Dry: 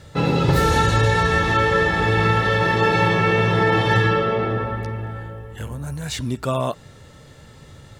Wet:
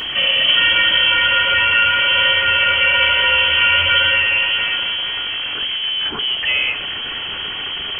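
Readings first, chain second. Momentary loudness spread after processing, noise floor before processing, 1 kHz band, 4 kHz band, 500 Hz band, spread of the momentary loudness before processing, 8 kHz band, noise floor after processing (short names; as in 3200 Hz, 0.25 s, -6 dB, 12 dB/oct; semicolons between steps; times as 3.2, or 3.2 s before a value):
11 LU, -46 dBFS, -0.5 dB, +18.5 dB, -9.0 dB, 14 LU, under -30 dB, -26 dBFS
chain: zero-crossing step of -20 dBFS; inverted band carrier 3200 Hz; two-slope reverb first 0.42 s, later 3 s, from -18 dB, DRR 10 dB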